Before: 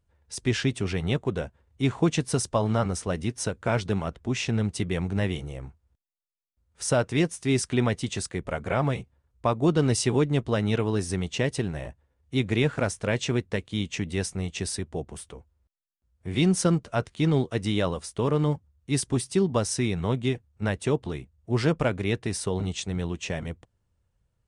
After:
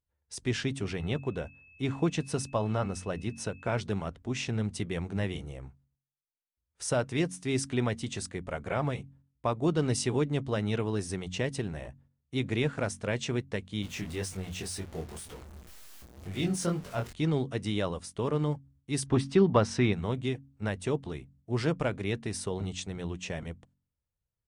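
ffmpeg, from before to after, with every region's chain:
-filter_complex "[0:a]asettb=1/sr,asplit=3[a][b][c];[a]atrim=end=0.964[d];[b]atrim=start=0.96:end=3.78,asetpts=PTS-STARTPTS,afade=t=in:d=0.004:c=qsin,afade=t=out:st=2.816:d=0.004:c=qsin,highshelf=f=5.4k:g=-5,aeval=exprs='val(0)+0.00316*sin(2*PI*2600*n/s)':c=same[e];[c]atrim=start=3.776[f];[d][e]acrossfade=d=0.004:c1=hsin:c2=qsin[g];[g][f]acrossfade=d=0.004:c1=qsin:c2=hsin,asettb=1/sr,asplit=3[h][i][j];[h]atrim=end=13.824[k];[i]atrim=start=13.82:end=17.13,asetpts=PTS-STARTPTS,afade=t=in:d=0.004:c=qsin,afade=t=out:st=3.306:d=0.004:c=qsin,aeval=exprs='val(0)+0.5*0.0211*sgn(val(0))':c=same,flanger=delay=20:depth=5.7:speed=2[l];[j]atrim=start=17.126[m];[k][l]acrossfade=d=0.004:c1=hsin:c2=qsin[n];[n][m]acrossfade=d=0.004:c1=qsin:c2=hsin,asettb=1/sr,asplit=3[o][p][q];[o]atrim=end=19.064[r];[p]atrim=start=19.06:end=19.93,asetpts=PTS-STARTPTS,afade=t=in:d=0.004:c=qsin,afade=t=out:st=0.866:d=0.004:c=qsin,lowpass=3.7k,equalizer=f=1.2k:w=1.1:g=3.5,acontrast=53[s];[q]atrim=start=19.926[t];[r][s]acrossfade=d=0.004:c1=hsin:c2=qsin[u];[u][t]acrossfade=d=0.004:c1=qsin:c2=hsin,agate=range=-11dB:threshold=-57dB:ratio=16:detection=peak,bandreject=f=45.66:t=h:w=4,bandreject=f=91.32:t=h:w=4,bandreject=f=136.98:t=h:w=4,bandreject=f=182.64:t=h:w=4,bandreject=f=228.3:t=h:w=4,bandreject=f=273.96:t=h:w=4,volume=-5dB"

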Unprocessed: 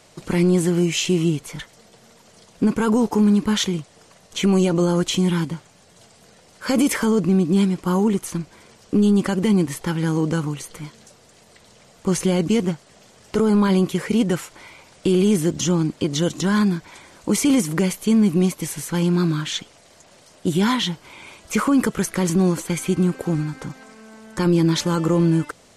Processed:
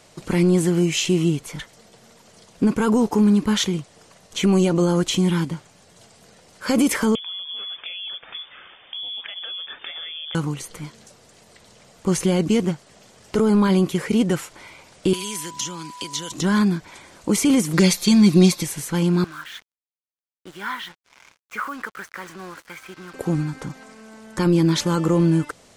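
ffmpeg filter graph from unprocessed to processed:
-filter_complex "[0:a]asettb=1/sr,asplit=3[a][b][c];[a]atrim=end=7.154[d];[b]atrim=start=7.15:end=10.35,asetpts=PTS-STARTPTS,afade=t=in:d=0.004:c=qsin,afade=t=out:st=3.196:d=0.004:c=qsin,equalizer=f=2.5k:t=o:w=2.5:g=8,acompressor=threshold=-30dB:ratio=8:attack=3.2:release=140:knee=1:detection=peak,lowpass=f=3.1k:t=q:w=0.5098,lowpass=f=3.1k:t=q:w=0.6013,lowpass=f=3.1k:t=q:w=0.9,lowpass=f=3.1k:t=q:w=2.563,afreqshift=-3600[e];[c]atrim=start=10.346[f];[d][e]acrossfade=d=0.004:c1=hsin:c2=qsin[g];[g][f]acrossfade=d=0.004:c1=qsin:c2=hsin,asettb=1/sr,asplit=3[h][i][j];[h]atrim=end=15.134[k];[i]atrim=start=15.13:end=16.32,asetpts=PTS-STARTPTS,afade=t=in:d=0.004:c=qsin,afade=t=out:st=1.186:d=0.004:c=qsin,acrossover=split=140|1200|4100[l][m][n][o];[l]acompressor=threshold=-44dB:ratio=3[p];[m]acompressor=threshold=-30dB:ratio=3[q];[n]acompressor=threshold=-43dB:ratio=3[r];[o]acompressor=threshold=-41dB:ratio=3[s];[p][q][r][s]amix=inputs=4:normalize=0,tiltshelf=f=1.1k:g=-9,aeval=exprs='val(0)+0.0141*sin(2*PI*990*n/s)':c=same[t];[j]atrim=start=16.316[u];[k][t]acrossfade=d=0.004:c1=hsin:c2=qsin[v];[v][u]acrossfade=d=0.004:c1=qsin:c2=hsin,asettb=1/sr,asplit=3[w][x][y];[w]atrim=end=17.734[z];[x]atrim=start=17.73:end=18.63,asetpts=PTS-STARTPTS,afade=t=in:d=0.004:c=qsin,afade=t=out:st=0.896:d=0.004:c=qsin,equalizer=f=4.2k:w=0.99:g=13.5,bandreject=f=3k:w=7.2,aecho=1:1:5.7:0.74,atrim=end_sample=39690[aa];[y]atrim=start=18.626[ab];[z][aa]acrossfade=d=0.004:c1=hsin:c2=qsin[ac];[ac][ab]acrossfade=d=0.004:c1=qsin:c2=hsin,asettb=1/sr,asplit=3[ad][ae][af];[ad]atrim=end=19.244[ag];[ae]atrim=start=19.24:end=23.14,asetpts=PTS-STARTPTS,afade=t=in:d=0.004:c=qsin,afade=t=out:st=3.896:d=0.004:c=qsin,bandpass=f=1.5k:t=q:w=2.1,acrusher=bits=6:mix=0:aa=0.5[ah];[af]atrim=start=23.136[ai];[ag][ah]acrossfade=d=0.004:c1=hsin:c2=qsin[aj];[aj][ai]acrossfade=d=0.004:c1=qsin:c2=hsin"

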